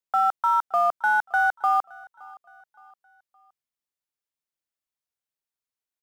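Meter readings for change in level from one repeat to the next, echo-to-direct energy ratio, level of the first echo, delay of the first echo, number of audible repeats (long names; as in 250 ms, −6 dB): −7.5 dB, −22.5 dB, −23.5 dB, 568 ms, 2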